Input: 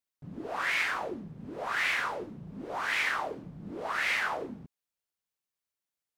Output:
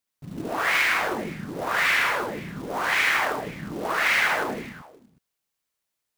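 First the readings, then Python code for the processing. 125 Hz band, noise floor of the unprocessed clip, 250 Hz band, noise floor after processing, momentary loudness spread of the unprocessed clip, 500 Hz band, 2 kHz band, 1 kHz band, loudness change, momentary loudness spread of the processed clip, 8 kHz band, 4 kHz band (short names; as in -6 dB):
+8.0 dB, under -85 dBFS, +8.0 dB, -82 dBFS, 15 LU, +8.0 dB, +8.0 dB, +8.0 dB, +7.5 dB, 14 LU, +10.0 dB, +8.0 dB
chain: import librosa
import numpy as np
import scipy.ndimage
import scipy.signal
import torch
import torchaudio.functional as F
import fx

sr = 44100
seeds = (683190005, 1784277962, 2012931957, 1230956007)

y = fx.quant_float(x, sr, bits=2)
y = fx.echo_multitap(y, sr, ms=(73, 158, 522), db=(-3.5, -4.5, -19.5))
y = y * librosa.db_to_amplitude(5.5)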